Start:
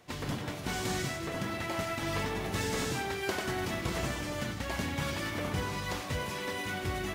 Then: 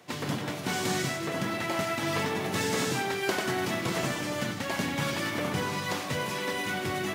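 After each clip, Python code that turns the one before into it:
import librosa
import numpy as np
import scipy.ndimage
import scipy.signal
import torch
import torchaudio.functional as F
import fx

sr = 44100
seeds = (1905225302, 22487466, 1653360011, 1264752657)

y = scipy.signal.sosfilt(scipy.signal.butter(4, 120.0, 'highpass', fs=sr, output='sos'), x)
y = F.gain(torch.from_numpy(y), 4.5).numpy()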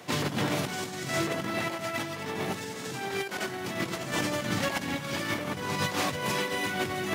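y = fx.over_compress(x, sr, threshold_db=-34.0, ratio=-0.5)
y = F.gain(torch.from_numpy(y), 3.5).numpy()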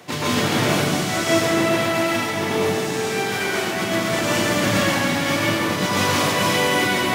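y = fx.rev_plate(x, sr, seeds[0], rt60_s=2.0, hf_ratio=1.0, predelay_ms=105, drr_db=-8.0)
y = F.gain(torch.from_numpy(y), 2.5).numpy()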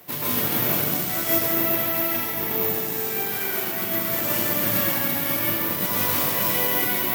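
y = (np.kron(x[::3], np.eye(3)[0]) * 3)[:len(x)]
y = F.gain(torch.from_numpy(y), -8.0).numpy()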